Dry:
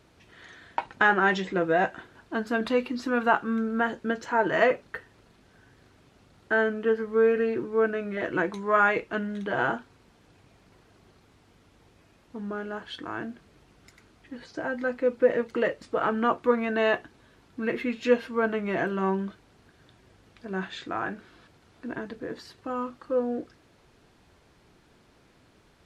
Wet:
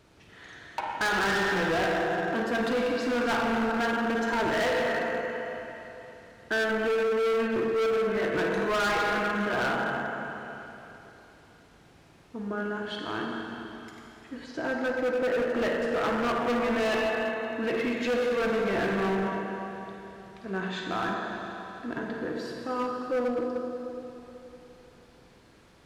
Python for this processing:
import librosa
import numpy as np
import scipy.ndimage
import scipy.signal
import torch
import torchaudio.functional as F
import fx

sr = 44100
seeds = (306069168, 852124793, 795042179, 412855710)

y = fx.rev_schroeder(x, sr, rt60_s=3.2, comb_ms=38, drr_db=-0.5)
y = np.clip(10.0 ** (24.0 / 20.0) * y, -1.0, 1.0) / 10.0 ** (24.0 / 20.0)